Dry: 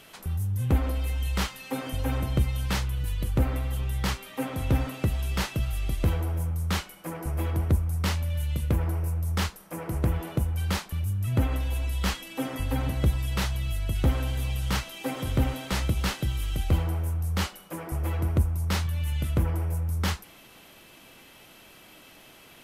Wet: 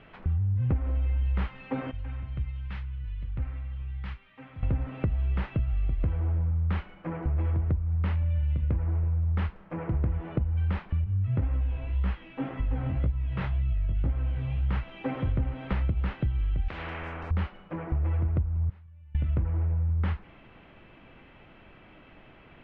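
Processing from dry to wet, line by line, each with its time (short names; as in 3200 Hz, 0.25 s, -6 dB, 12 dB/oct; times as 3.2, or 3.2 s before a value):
1.91–4.63 passive tone stack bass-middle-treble 5-5-5
11.04–14.69 chorus 1.9 Hz, delay 16 ms, depth 6.9 ms
16.68–17.31 spectral compressor 10:1
18.69–19.15 flipped gate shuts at -27 dBFS, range -29 dB
whole clip: LPF 2500 Hz 24 dB/oct; low shelf 140 Hz +11 dB; compressor, threshold -23 dBFS; gain -1 dB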